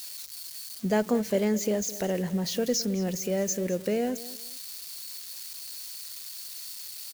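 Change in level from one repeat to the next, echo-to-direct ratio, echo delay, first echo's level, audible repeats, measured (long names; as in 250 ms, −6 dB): −11.5 dB, −16.5 dB, 213 ms, −17.0 dB, 2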